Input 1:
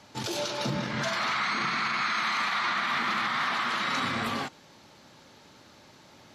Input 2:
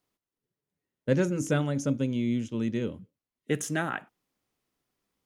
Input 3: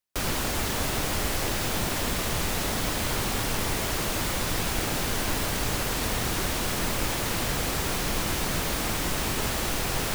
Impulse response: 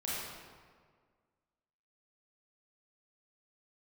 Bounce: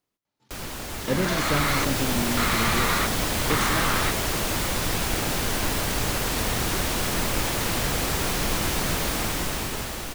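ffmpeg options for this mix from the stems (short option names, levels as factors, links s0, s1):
-filter_complex "[0:a]adelay=250,volume=1.19,asplit=3[s0][s1][s2];[s0]atrim=end=1.85,asetpts=PTS-STARTPTS,afade=t=out:st=1.846:d=0.004:c=hsin[s3];[s1]atrim=start=1.85:end=2.37,asetpts=PTS-STARTPTS,volume=0[s4];[s2]atrim=start=2.37,asetpts=PTS-STARTPTS,afade=t=in:d=0.004:c=hsin[s5];[s3][s4][s5]concat=n=3:v=0:a=1[s6];[1:a]volume=0.891,asplit=2[s7][s8];[2:a]dynaudnorm=f=170:g=13:m=3.16,adelay=350,volume=0.447[s9];[s8]apad=whole_len=290839[s10];[s6][s10]sidechaingate=range=0.0224:threshold=0.00398:ratio=16:detection=peak[s11];[s11][s7][s9]amix=inputs=3:normalize=0"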